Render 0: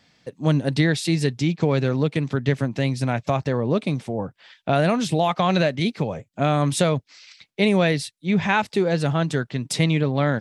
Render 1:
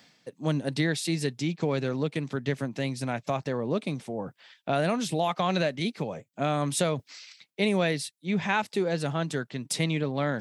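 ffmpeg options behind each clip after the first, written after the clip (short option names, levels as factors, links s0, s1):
-af "highpass=150,highshelf=f=9500:g=9.5,areverse,acompressor=mode=upward:threshold=0.0355:ratio=2.5,areverse,volume=0.501"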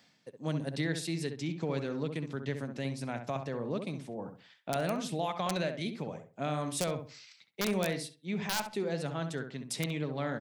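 -filter_complex "[0:a]aeval=exprs='(mod(4.73*val(0)+1,2)-1)/4.73':c=same,asplit=2[s0][s1];[s1]adelay=66,lowpass=f=1600:p=1,volume=0.473,asplit=2[s2][s3];[s3]adelay=66,lowpass=f=1600:p=1,volume=0.29,asplit=2[s4][s5];[s5]adelay=66,lowpass=f=1600:p=1,volume=0.29,asplit=2[s6][s7];[s7]adelay=66,lowpass=f=1600:p=1,volume=0.29[s8];[s2][s4][s6][s8]amix=inputs=4:normalize=0[s9];[s0][s9]amix=inputs=2:normalize=0,volume=0.447"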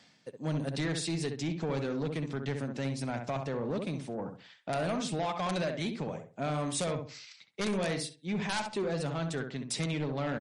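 -af "aresample=22050,aresample=44100,asoftclip=type=tanh:threshold=0.0299,volume=1.68" -ar 44100 -c:a libmp3lame -b:a 48k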